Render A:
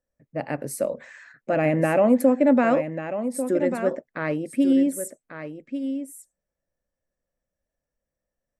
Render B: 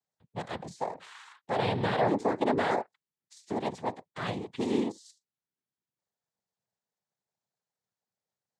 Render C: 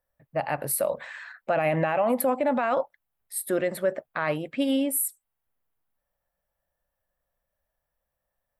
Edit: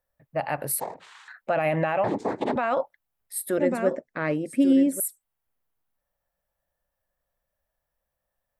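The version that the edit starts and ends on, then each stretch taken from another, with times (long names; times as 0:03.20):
C
0:00.80–0:01.28: punch in from B
0:02.04–0:02.56: punch in from B
0:03.58–0:05.00: punch in from A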